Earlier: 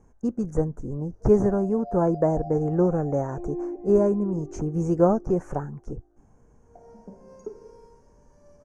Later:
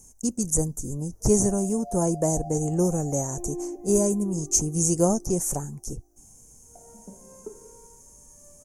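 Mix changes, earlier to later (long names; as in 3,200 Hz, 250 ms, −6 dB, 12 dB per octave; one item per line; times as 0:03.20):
speech: remove low-pass with resonance 1,500 Hz, resonance Q 2.6
master: add parametric band 460 Hz −3.5 dB 0.89 octaves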